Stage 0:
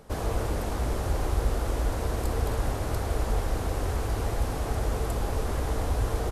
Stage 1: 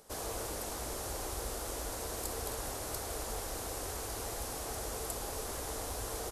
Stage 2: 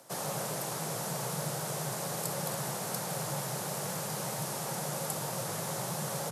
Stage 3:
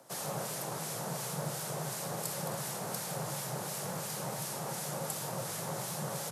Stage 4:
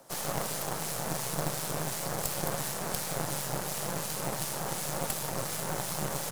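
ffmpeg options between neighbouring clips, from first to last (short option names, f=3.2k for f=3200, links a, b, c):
-af "bass=f=250:g=-10,treble=f=4k:g=12,volume=-7.5dB"
-af "afreqshift=100,volume=3.5dB"
-filter_complex "[0:a]acrossover=split=1600[a][b];[a]aeval=exprs='val(0)*(1-0.5/2+0.5/2*cos(2*PI*2.8*n/s))':c=same[c];[b]aeval=exprs='val(0)*(1-0.5/2-0.5/2*cos(2*PI*2.8*n/s))':c=same[d];[c][d]amix=inputs=2:normalize=0"
-af "acrusher=bits=3:mode=log:mix=0:aa=0.000001,aeval=exprs='0.158*(cos(1*acos(clip(val(0)/0.158,-1,1)))-cos(1*PI/2))+0.0501*(cos(6*acos(clip(val(0)/0.158,-1,1)))-cos(6*PI/2))':c=same,volume=2dB"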